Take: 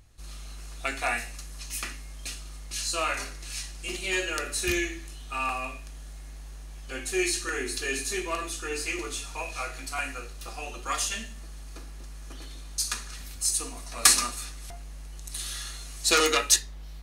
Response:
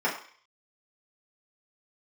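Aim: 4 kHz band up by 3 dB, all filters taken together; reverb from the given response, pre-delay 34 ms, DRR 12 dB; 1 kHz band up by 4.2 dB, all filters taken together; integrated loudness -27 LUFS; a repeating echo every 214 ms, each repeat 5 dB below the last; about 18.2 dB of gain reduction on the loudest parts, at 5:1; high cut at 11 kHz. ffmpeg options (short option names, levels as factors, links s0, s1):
-filter_complex "[0:a]lowpass=11000,equalizer=f=1000:t=o:g=5.5,equalizer=f=4000:t=o:g=3.5,acompressor=threshold=0.02:ratio=5,aecho=1:1:214|428|642|856|1070|1284|1498:0.562|0.315|0.176|0.0988|0.0553|0.031|0.0173,asplit=2[s0][s1];[1:a]atrim=start_sample=2205,adelay=34[s2];[s1][s2]afir=irnorm=-1:irlink=0,volume=0.0596[s3];[s0][s3]amix=inputs=2:normalize=0,volume=2.82"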